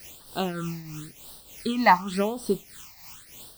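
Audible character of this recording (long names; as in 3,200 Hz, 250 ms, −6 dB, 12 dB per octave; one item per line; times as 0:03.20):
a quantiser's noise floor 8 bits, dither triangular
tremolo triangle 3.3 Hz, depth 70%
phaser sweep stages 8, 0.92 Hz, lowest notch 420–2,200 Hz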